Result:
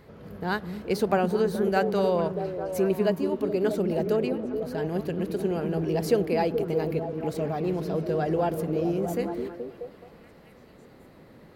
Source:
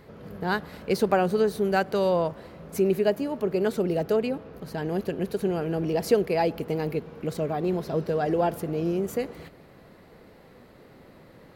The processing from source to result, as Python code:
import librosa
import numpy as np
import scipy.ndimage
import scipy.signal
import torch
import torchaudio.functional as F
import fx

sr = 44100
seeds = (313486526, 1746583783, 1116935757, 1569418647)

y = fx.peak_eq(x, sr, hz=64.0, db=2.5, octaves=1.5)
y = fx.echo_stepped(y, sr, ms=213, hz=210.0, octaves=0.7, feedback_pct=70, wet_db=-1.5)
y = F.gain(torch.from_numpy(y), -2.0).numpy()